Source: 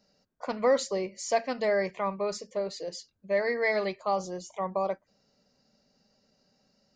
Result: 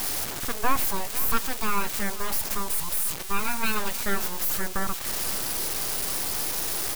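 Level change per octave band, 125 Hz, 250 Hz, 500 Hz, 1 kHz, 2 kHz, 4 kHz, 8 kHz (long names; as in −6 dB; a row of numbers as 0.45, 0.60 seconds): can't be measured, +2.5 dB, −9.0 dB, +3.5 dB, +3.5 dB, +10.5 dB, +15.0 dB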